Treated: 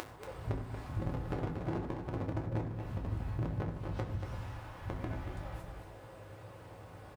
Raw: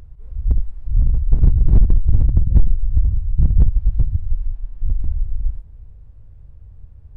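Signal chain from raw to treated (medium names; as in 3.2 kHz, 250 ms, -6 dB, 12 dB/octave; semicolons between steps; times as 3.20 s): high-pass 530 Hz 12 dB/octave; compression 12:1, threshold -52 dBFS, peak gain reduction 19.5 dB; delay 234 ms -7.5 dB; on a send at -1 dB: reverberation RT60 0.65 s, pre-delay 4 ms; on the sum: trim +16 dB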